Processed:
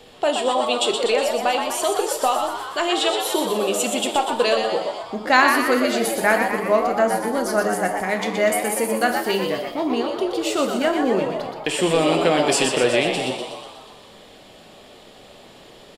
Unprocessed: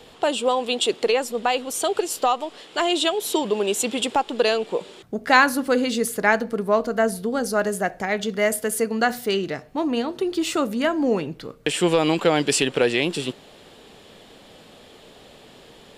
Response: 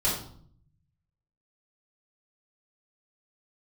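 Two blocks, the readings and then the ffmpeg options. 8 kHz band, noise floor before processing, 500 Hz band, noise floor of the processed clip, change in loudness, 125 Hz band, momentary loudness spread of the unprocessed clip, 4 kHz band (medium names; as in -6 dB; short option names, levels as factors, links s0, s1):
+1.5 dB, -48 dBFS, +2.0 dB, -46 dBFS, +2.0 dB, -0.5 dB, 7 LU, +2.0 dB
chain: -filter_complex "[0:a]asplit=9[s0][s1][s2][s3][s4][s5][s6][s7][s8];[s1]adelay=122,afreqshift=100,volume=0.501[s9];[s2]adelay=244,afreqshift=200,volume=0.302[s10];[s3]adelay=366,afreqshift=300,volume=0.18[s11];[s4]adelay=488,afreqshift=400,volume=0.108[s12];[s5]adelay=610,afreqshift=500,volume=0.0653[s13];[s6]adelay=732,afreqshift=600,volume=0.0389[s14];[s7]adelay=854,afreqshift=700,volume=0.0234[s15];[s8]adelay=976,afreqshift=800,volume=0.014[s16];[s0][s9][s10][s11][s12][s13][s14][s15][s16]amix=inputs=9:normalize=0,asplit=2[s17][s18];[1:a]atrim=start_sample=2205,lowshelf=f=200:g=-11[s19];[s18][s19]afir=irnorm=-1:irlink=0,volume=0.188[s20];[s17][s20]amix=inputs=2:normalize=0,volume=0.841"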